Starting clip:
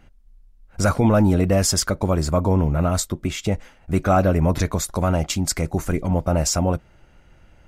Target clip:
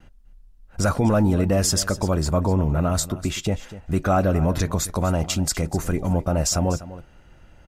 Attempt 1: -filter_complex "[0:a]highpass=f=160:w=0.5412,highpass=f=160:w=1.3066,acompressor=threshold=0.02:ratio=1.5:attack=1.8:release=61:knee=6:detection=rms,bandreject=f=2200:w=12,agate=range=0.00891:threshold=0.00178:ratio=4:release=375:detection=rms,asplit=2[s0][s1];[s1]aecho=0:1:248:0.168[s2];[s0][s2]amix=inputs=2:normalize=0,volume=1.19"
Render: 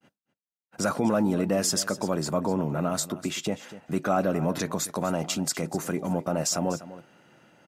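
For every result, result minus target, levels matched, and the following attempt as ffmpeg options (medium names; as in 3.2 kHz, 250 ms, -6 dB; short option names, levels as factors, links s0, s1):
125 Hz band -5.5 dB; compression: peak gain reduction +4.5 dB
-filter_complex "[0:a]acompressor=threshold=0.02:ratio=1.5:attack=1.8:release=61:knee=6:detection=rms,bandreject=f=2200:w=12,agate=range=0.00891:threshold=0.00178:ratio=4:release=375:detection=rms,asplit=2[s0][s1];[s1]aecho=0:1:248:0.168[s2];[s0][s2]amix=inputs=2:normalize=0,volume=1.19"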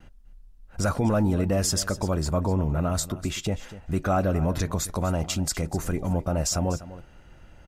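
compression: peak gain reduction +4 dB
-filter_complex "[0:a]acompressor=threshold=0.0794:ratio=1.5:attack=1.8:release=61:knee=6:detection=rms,bandreject=f=2200:w=12,agate=range=0.00891:threshold=0.00178:ratio=4:release=375:detection=rms,asplit=2[s0][s1];[s1]aecho=0:1:248:0.168[s2];[s0][s2]amix=inputs=2:normalize=0,volume=1.19"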